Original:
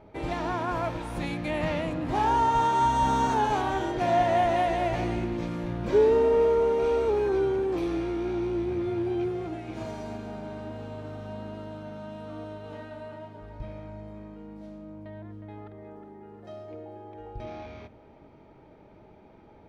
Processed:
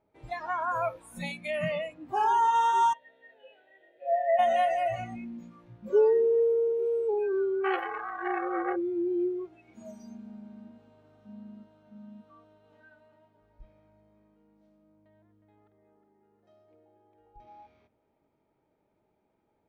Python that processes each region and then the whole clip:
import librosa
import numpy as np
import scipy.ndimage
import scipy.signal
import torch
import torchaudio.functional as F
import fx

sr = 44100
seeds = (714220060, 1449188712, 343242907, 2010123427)

y = fx.chain(x, sr, fx.vowel_filter(vowel='e'),
    fx.high_shelf_res(hz=5300.0, db=-12.0, q=3.0),
    fx.small_body(hz=(670.0, 2000.0), ring_ms=90, db=16), at=(2.93, 4.39))
y = fx.chain(y, sr, fx.band_shelf(hz=650.0, db=13.5, octaves=1.1),
    fx.comb(ms=2.7, depth=0.96),
    fx.transformer_sat(knee_hz=1500.0), at=(7.64, 8.76))
y = fx.rider(y, sr, range_db=3, speed_s=2.0)
y = fx.noise_reduce_blind(y, sr, reduce_db=23)
y = fx.low_shelf(y, sr, hz=120.0, db=-7.5)